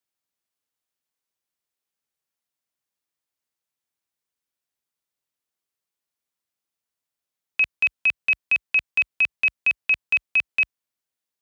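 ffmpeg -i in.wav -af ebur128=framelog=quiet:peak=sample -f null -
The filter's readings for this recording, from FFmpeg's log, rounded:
Integrated loudness:
  I:         -21.1 LUFS
  Threshold: -31.2 LUFS
Loudness range:
  LRA:         8.1 LU
  Threshold: -43.0 LUFS
  LRA low:   -29.0 LUFS
  LRA high:  -20.9 LUFS
Sample peak:
  Peak:      -13.5 dBFS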